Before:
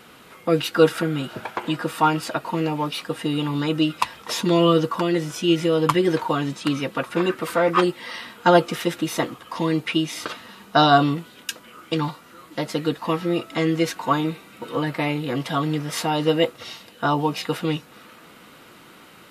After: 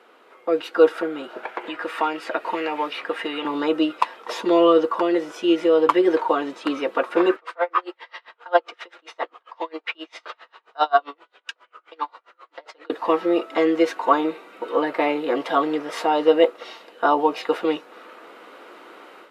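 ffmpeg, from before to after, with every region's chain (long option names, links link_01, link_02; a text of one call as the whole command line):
ffmpeg -i in.wav -filter_complex "[0:a]asettb=1/sr,asplit=3[link_01][link_02][link_03];[link_01]atrim=end=1.434[link_04];[link_02]atrim=start=1.43:end=3.45,asetpts=PTS-STARTPTS,afade=type=in:duration=0.004:curve=qsin,afade=type=out:start_time=2.016:duration=0.004:curve=qsin,equalizer=frequency=2000:width_type=o:width=1.3:gain=10.5,acrossover=split=660|3000[link_05][link_06][link_07];[link_05]acompressor=threshold=-31dB:ratio=4[link_08];[link_06]acompressor=threshold=-33dB:ratio=4[link_09];[link_07]acompressor=threshold=-38dB:ratio=4[link_10];[link_08][link_09][link_10]amix=inputs=3:normalize=0[link_11];[link_03]atrim=start=3.446[link_12];[link_04][link_11]acrossfade=duration=0.004:curve1=hsin:curve2=qsin[link_13];[link_13][link_12]acrossfade=duration=0.004:curve1=qsin:curve2=hsin,asettb=1/sr,asplit=3[link_14][link_15][link_16];[link_14]atrim=end=7.364[link_17];[link_15]atrim=start=7.36:end=12.9,asetpts=PTS-STARTPTS,afade=type=in:duration=0.004:curve=qsin,afade=type=out:start_time=5.536:duration=0.004:curve=qsin,highpass=670,lowpass=5400,aeval=exprs='val(0)*pow(10,-32*(0.5-0.5*cos(2*PI*7.5*n/s))/20)':channel_layout=same[link_18];[link_16]atrim=start=12.896[link_19];[link_17][link_18]acrossfade=duration=0.004:curve1=hsin:curve2=qsin[link_20];[link_20][link_19]acrossfade=duration=0.004:curve1=qsin:curve2=hsin,lowpass=frequency=1000:poles=1,dynaudnorm=framelen=400:gausssize=3:maxgain=9dB,highpass=frequency=360:width=0.5412,highpass=frequency=360:width=1.3066" out.wav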